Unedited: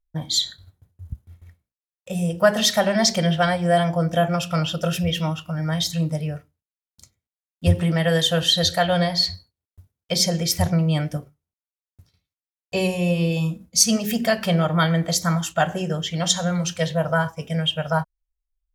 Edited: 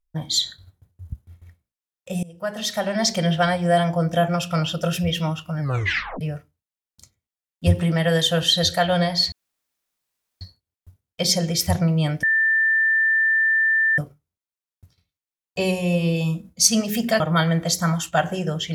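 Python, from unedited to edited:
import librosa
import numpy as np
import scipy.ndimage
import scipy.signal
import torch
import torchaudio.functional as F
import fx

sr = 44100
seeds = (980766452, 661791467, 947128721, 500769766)

y = fx.edit(x, sr, fx.fade_in_from(start_s=2.23, length_s=1.11, floor_db=-22.5),
    fx.tape_stop(start_s=5.6, length_s=0.61),
    fx.insert_room_tone(at_s=9.32, length_s=1.09),
    fx.insert_tone(at_s=11.14, length_s=1.75, hz=1780.0, db=-15.5),
    fx.cut(start_s=14.36, length_s=0.27), tone=tone)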